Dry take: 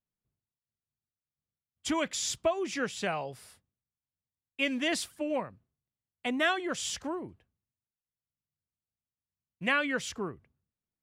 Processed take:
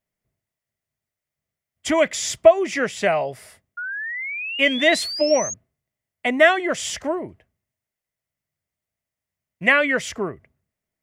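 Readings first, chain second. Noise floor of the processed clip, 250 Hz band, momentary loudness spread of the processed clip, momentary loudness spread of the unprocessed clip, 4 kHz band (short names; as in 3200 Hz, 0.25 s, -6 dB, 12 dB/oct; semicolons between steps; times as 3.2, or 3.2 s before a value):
under -85 dBFS, +8.0 dB, 14 LU, 12 LU, +9.5 dB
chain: thirty-one-band EQ 400 Hz +3 dB, 630 Hz +11 dB, 2000 Hz +10 dB, 4000 Hz -4 dB; painted sound rise, 3.77–5.54, 1400–6700 Hz -36 dBFS; gain +7 dB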